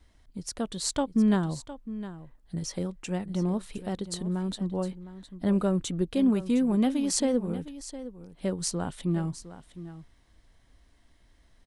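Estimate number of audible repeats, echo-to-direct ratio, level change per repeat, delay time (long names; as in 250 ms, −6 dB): 1, −14.0 dB, repeats not evenly spaced, 710 ms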